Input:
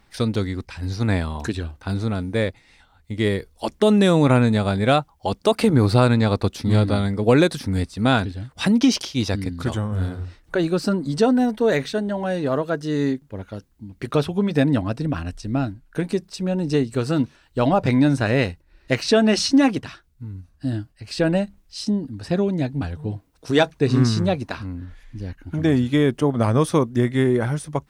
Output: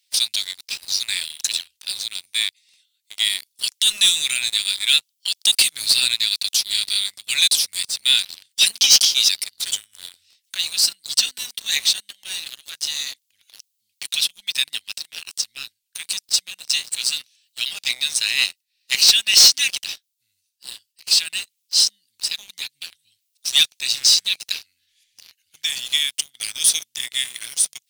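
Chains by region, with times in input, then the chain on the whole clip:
14.84–15.44 HPF 570 Hz 6 dB/oct + mismatched tape noise reduction encoder only
whole clip: inverse Chebyshev high-pass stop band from 1100 Hz, stop band 50 dB; high shelf 3900 Hz +8 dB; sample leveller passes 3; gain +2.5 dB

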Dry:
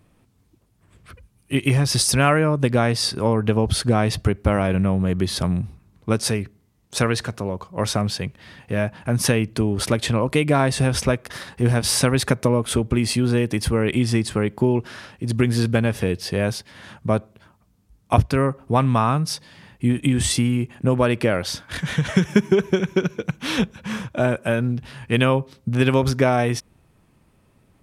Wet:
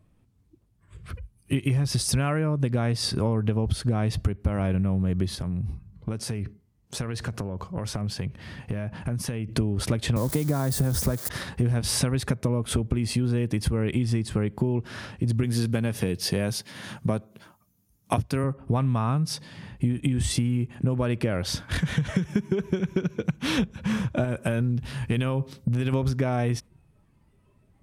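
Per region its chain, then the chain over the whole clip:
5.35–9.49 notch 3700 Hz, Q 21 + compressor 16:1, threshold -30 dBFS
10.16–11.29 switching spikes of -16 dBFS + bell 2600 Hz -12.5 dB 0.66 oct + three-band squash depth 40%
15.43–18.44 HPF 120 Hz + high shelf 4500 Hz +9 dB + notch 7700 Hz, Q 17
24.24–25.93 high shelf 4400 Hz +5.5 dB + compressor, threshold -19 dBFS
whole clip: spectral noise reduction 11 dB; low shelf 230 Hz +10.5 dB; compressor 6:1, threshold -22 dBFS

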